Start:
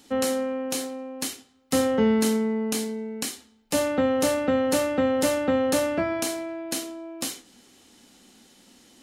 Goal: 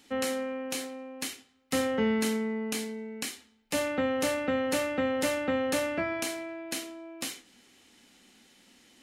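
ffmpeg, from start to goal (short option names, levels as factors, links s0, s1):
-af "equalizer=f=2200:w=1.2:g=7.5,volume=0.473"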